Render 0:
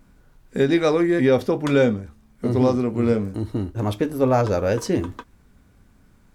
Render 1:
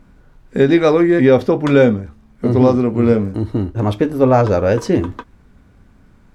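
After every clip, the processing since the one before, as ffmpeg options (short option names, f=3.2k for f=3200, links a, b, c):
-af "lowpass=f=3.1k:p=1,volume=6.5dB"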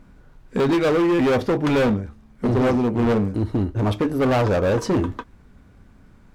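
-af "asoftclip=type=hard:threshold=-14.5dB,volume=-1.5dB"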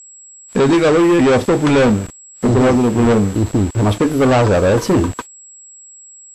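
-af "aeval=exprs='val(0)*gte(abs(val(0)),0.0211)':c=same,aeval=exprs='val(0)+0.00631*sin(2*PI*7700*n/s)':c=same,volume=6.5dB" -ar 32000 -c:a wmav2 -b:a 64k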